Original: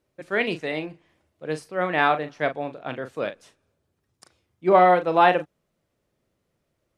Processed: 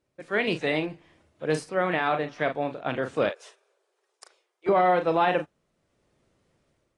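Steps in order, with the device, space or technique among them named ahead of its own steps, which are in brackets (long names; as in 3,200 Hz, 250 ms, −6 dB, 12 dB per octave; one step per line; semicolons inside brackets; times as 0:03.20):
0:03.29–0:04.69: elliptic high-pass filter 390 Hz, stop band 40 dB
low-bitrate web radio (automatic gain control gain up to 8 dB; brickwall limiter −10 dBFS, peak gain reduction 8.5 dB; level −3 dB; AAC 32 kbit/s 22,050 Hz)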